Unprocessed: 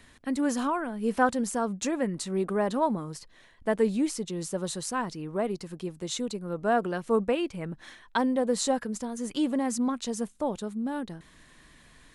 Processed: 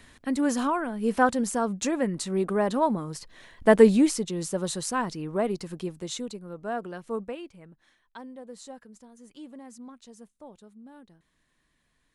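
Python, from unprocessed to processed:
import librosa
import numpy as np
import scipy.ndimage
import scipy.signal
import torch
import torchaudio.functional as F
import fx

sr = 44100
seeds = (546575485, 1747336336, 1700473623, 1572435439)

y = fx.gain(x, sr, db=fx.line((3.07, 2.0), (3.77, 10.0), (4.31, 2.5), (5.81, 2.5), (6.56, -7.0), (7.15, -7.0), (7.81, -17.0)))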